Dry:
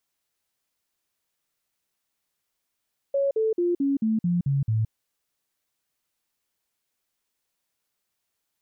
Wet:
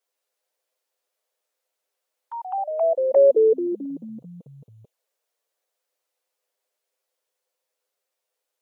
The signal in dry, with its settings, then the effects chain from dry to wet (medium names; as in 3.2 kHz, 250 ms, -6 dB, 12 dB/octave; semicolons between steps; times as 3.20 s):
stepped sine 555 Hz down, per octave 3, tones 8, 0.17 s, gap 0.05 s -20 dBFS
touch-sensitive flanger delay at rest 9.8 ms, full sweep at -24 dBFS; resonant high-pass 500 Hz, resonance Q 4.9; ever faster or slower copies 149 ms, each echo +3 st, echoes 3, each echo -6 dB